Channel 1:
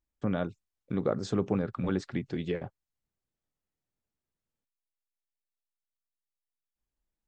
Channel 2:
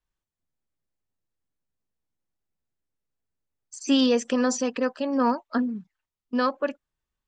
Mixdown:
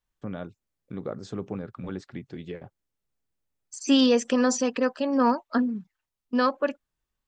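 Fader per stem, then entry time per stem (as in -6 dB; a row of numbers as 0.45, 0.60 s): -5.0, +1.0 dB; 0.00, 0.00 s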